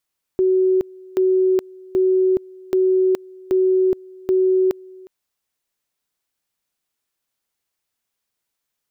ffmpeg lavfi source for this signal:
-f lavfi -i "aevalsrc='pow(10,(-13-24.5*gte(mod(t,0.78),0.42))/20)*sin(2*PI*374*t)':d=4.68:s=44100"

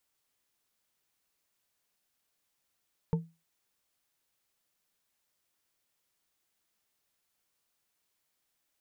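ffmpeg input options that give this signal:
-f lavfi -i "aevalsrc='0.0841*pow(10,-3*t/0.27)*sin(2*PI*165*t)+0.0376*pow(10,-3*t/0.133)*sin(2*PI*454.9*t)+0.0168*pow(10,-3*t/0.083)*sin(2*PI*891.7*t)':d=0.89:s=44100"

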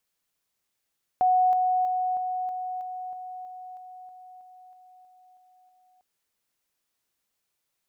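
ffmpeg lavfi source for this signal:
-f lavfi -i "aevalsrc='pow(10,(-17.5-3*floor(t/0.32))/20)*sin(2*PI*737*t)':d=4.8:s=44100"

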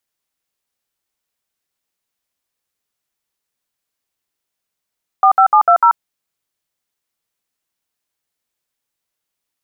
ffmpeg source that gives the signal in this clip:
-f lavfi -i "aevalsrc='0.355*clip(min(mod(t,0.149),0.086-mod(t,0.149))/0.002,0,1)*(eq(floor(t/0.149),0)*(sin(2*PI*770*mod(t,0.149))+sin(2*PI*1209*mod(t,0.149)))+eq(floor(t/0.149),1)*(sin(2*PI*770*mod(t,0.149))+sin(2*PI*1336*mod(t,0.149)))+eq(floor(t/0.149),2)*(sin(2*PI*852*mod(t,0.149))+sin(2*PI*1209*mod(t,0.149)))+eq(floor(t/0.149),3)*(sin(2*PI*697*mod(t,0.149))+sin(2*PI*1336*mod(t,0.149)))+eq(floor(t/0.149),4)*(sin(2*PI*941*mod(t,0.149))+sin(2*PI*1336*mod(t,0.149))))':d=0.745:s=44100"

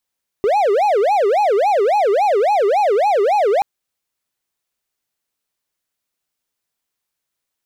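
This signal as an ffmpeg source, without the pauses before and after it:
-f lavfi -i "aevalsrc='0.316*(1-4*abs(mod((618.5*t-227.5/(2*PI*3.6)*sin(2*PI*3.6*t))+0.25,1)-0.5))':d=3.18:s=44100"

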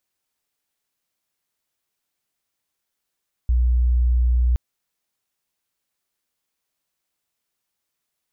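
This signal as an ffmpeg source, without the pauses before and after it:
-f lavfi -i "aevalsrc='0.188*sin(2*PI*60.8*t)':d=1.07:s=44100"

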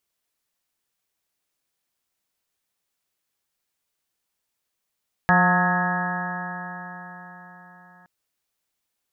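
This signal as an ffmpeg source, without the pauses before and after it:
-f lavfi -i "aevalsrc='0.112*pow(10,-3*t/4.53)*sin(2*PI*177.11*t)+0.02*pow(10,-3*t/4.53)*sin(2*PI*354.85*t)+0.0282*pow(10,-3*t/4.53)*sin(2*PI*533.86*t)+0.0891*pow(10,-3*t/4.53)*sin(2*PI*714.76*t)+0.0891*pow(10,-3*t/4.53)*sin(2*PI*898.18*t)+0.0447*pow(10,-3*t/4.53)*sin(2*PI*1084.7*t)+0.0668*pow(10,-3*t/4.53)*sin(2*PI*1274.91*t)+0.0224*pow(10,-3*t/4.53)*sin(2*PI*1469.37*t)+0.126*pow(10,-3*t/4.53)*sin(2*PI*1668.62*t)+0.0316*pow(10,-3*t/4.53)*sin(2*PI*1873.19*t)':d=2.77:s=44100"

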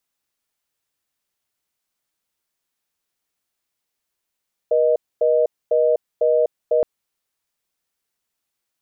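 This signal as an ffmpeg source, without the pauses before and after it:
-f lavfi -i "aevalsrc='0.15*(sin(2*PI*480*t)+sin(2*PI*620*t))*clip(min(mod(t,0.5),0.25-mod(t,0.5))/0.005,0,1)':d=2.12:s=44100"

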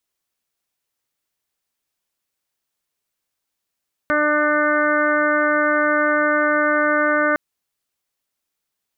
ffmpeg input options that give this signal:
-f lavfi -i "aevalsrc='0.0708*sin(2*PI*299*t)+0.1*sin(2*PI*598*t)+0.0211*sin(2*PI*897*t)+0.0794*sin(2*PI*1196*t)+0.1*sin(2*PI*1495*t)+0.0501*sin(2*PI*1794*t)+0.0316*sin(2*PI*2093*t)':d=3.26:s=44100"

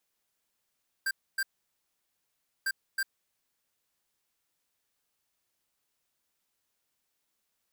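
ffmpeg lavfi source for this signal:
-f lavfi -i "aevalsrc='0.0335*(2*lt(mod(1580*t,1),0.5)-1)*clip(min(mod(mod(t,1.6),0.32),0.05-mod(mod(t,1.6),0.32))/0.005,0,1)*lt(mod(t,1.6),0.64)':d=3.2:s=44100"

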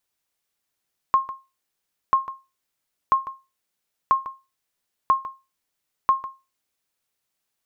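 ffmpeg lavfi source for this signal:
-f lavfi -i "aevalsrc='0.335*(sin(2*PI*1070*mod(t,0.99))*exp(-6.91*mod(t,0.99)/0.26)+0.188*sin(2*PI*1070*max(mod(t,0.99)-0.15,0))*exp(-6.91*max(mod(t,0.99)-0.15,0)/0.26))':d=5.94:s=44100"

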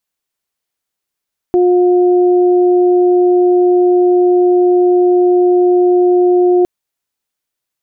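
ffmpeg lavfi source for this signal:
-f lavfi -i "aevalsrc='0.447*sin(2*PI*358*t)+0.106*sin(2*PI*716*t)':d=5.11:s=44100"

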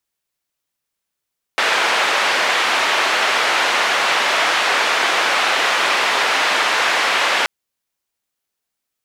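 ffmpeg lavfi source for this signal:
-f lavfi -i "anoisesrc=c=white:d=5.88:r=44100:seed=1,highpass=f=580,lowpass=f=2400,volume=-1.8dB"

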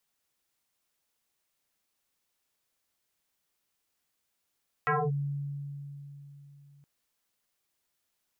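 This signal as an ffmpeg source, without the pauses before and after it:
-f lavfi -i "aevalsrc='0.0708*pow(10,-3*t/3.63)*sin(2*PI*142*t+6.5*clip(1-t/0.24,0,1)*sin(2*PI*2.1*142*t))':d=1.97:s=44100"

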